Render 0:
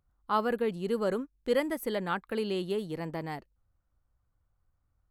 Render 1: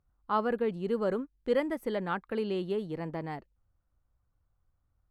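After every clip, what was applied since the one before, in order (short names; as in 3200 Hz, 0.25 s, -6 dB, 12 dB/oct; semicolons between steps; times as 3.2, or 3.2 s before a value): LPF 2200 Hz 6 dB/oct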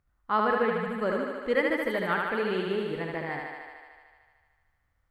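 spectral delete 0.71–1.01, 250–6800 Hz; bell 1900 Hz +10 dB 0.92 oct; on a send: thinning echo 75 ms, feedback 78%, high-pass 230 Hz, level -3 dB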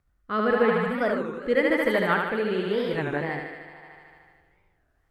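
rotary speaker horn 0.9 Hz; spring tank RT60 2.8 s, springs 46 ms, chirp 80 ms, DRR 16 dB; record warp 33 1/3 rpm, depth 250 cents; gain +6 dB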